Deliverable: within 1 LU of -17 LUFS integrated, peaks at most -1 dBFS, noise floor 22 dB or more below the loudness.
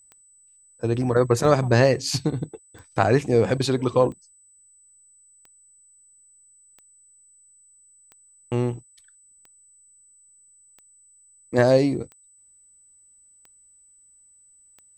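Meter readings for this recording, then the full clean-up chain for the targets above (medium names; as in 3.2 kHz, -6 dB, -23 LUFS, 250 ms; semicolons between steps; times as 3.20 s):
clicks found 12; steady tone 8 kHz; tone level -53 dBFS; loudness -22.0 LUFS; peak level -3.0 dBFS; loudness target -17.0 LUFS
-> de-click; band-stop 8 kHz, Q 30; trim +5 dB; peak limiter -1 dBFS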